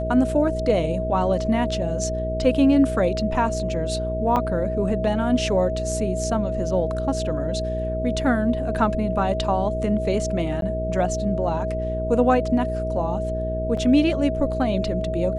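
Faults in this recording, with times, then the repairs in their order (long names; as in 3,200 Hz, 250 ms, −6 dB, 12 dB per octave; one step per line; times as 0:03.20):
mains hum 60 Hz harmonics 8 −28 dBFS
whistle 640 Hz −26 dBFS
0:04.36: drop-out 4.9 ms
0:10.61–0:10.62: drop-out 12 ms
0:13.77: drop-out 4 ms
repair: hum removal 60 Hz, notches 8
notch filter 640 Hz, Q 30
repair the gap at 0:04.36, 4.9 ms
repair the gap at 0:10.61, 12 ms
repair the gap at 0:13.77, 4 ms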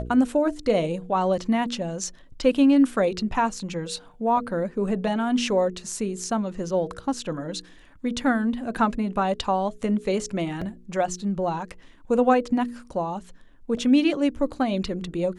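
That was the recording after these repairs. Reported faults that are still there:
none of them is left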